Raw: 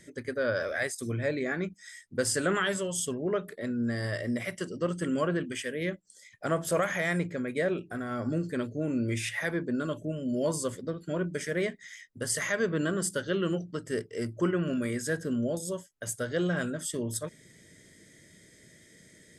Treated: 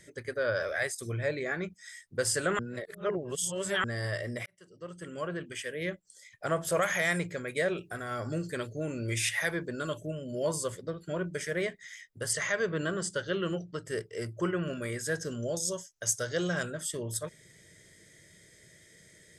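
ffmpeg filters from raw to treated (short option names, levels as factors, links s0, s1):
-filter_complex "[0:a]asettb=1/sr,asplit=3[s0][s1][s2];[s0]atrim=end=6.814[s3];[s1]atrim=start=6.81:end=10.11,asetpts=PTS-STARTPTS,afade=t=in:d=0.004:c=qsin,afade=t=out:st=3.296:d=0.004:c=qsin,highshelf=f=3000:g=7.5[s4];[s2]atrim=start=10.106[s5];[s3][s4]acrossfade=d=0.004:c1=hsin:c2=qsin[s6];[s6][s5]acrossfade=d=0.004:c1=qsin:c2=hsin,asettb=1/sr,asplit=3[s7][s8][s9];[s7]atrim=end=12.334[s10];[s8]atrim=start=12.33:end=13.85,asetpts=PTS-STARTPTS,afade=t=in:d=0.004:c=qsin,afade=t=out:st=1.516:d=0.004:c=qsin,lowpass=f=7800:w=0.5412,lowpass=f=7800:w=1.3066[s11];[s9]atrim=start=13.846[s12];[s10][s11]acrossfade=d=0.004:c1=hsin:c2=qsin[s13];[s13][s12]acrossfade=d=0.004:c1=qsin:c2=hsin,asettb=1/sr,asplit=3[s14][s15][s16];[s14]atrim=end=15.154[s17];[s15]atrim=start=15.15:end=16.63,asetpts=PTS-STARTPTS,afade=t=in:d=0.004:c=qsin,afade=t=out:st=1.476:d=0.004:c=qsin,equalizer=f=5900:w=2:g=14.5[s18];[s16]atrim=start=16.626[s19];[s17][s18]acrossfade=d=0.004:c1=hsin:c2=qsin[s20];[s20][s19]acrossfade=d=0.004:c1=qsin:c2=hsin,asplit=4[s21][s22][s23][s24];[s21]atrim=end=2.592[s25];[s22]atrim=start=2.588:end=3.842,asetpts=PTS-STARTPTS,areverse[s26];[s23]atrim=start=3.838:end=4.46,asetpts=PTS-STARTPTS,afade=t=out:st=0.618:d=0.004:c=hsin[s27];[s24]atrim=start=4.46,asetpts=PTS-STARTPTS,afade=t=in:d=1.45[s28];[s25][s26]acrossfade=d=0.004:c1=hsin:c2=hsin[s29];[s27][s28]concat=n=2:v=0:a=1[s30];[s29][s30]acrossfade=d=0.004:c1=hsin:c2=hsin,equalizer=f=250:t=o:w=0.66:g=-11"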